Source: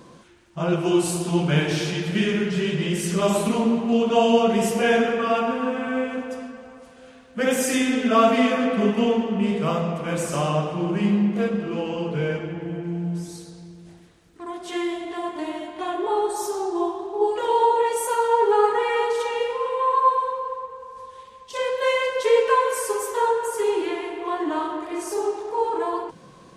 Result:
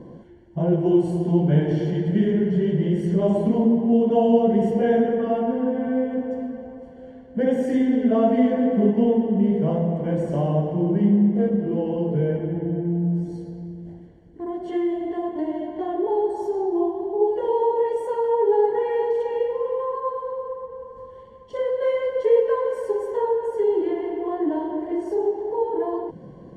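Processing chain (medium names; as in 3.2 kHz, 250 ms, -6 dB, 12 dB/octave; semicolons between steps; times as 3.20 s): in parallel at +2 dB: compression, threshold -31 dBFS, peak gain reduction 18 dB; on the sum: boxcar filter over 35 samples; trim +1 dB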